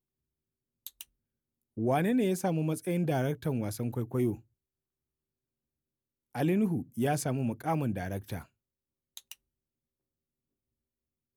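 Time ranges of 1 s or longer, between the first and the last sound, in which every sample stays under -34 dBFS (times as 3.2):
4.34–6.35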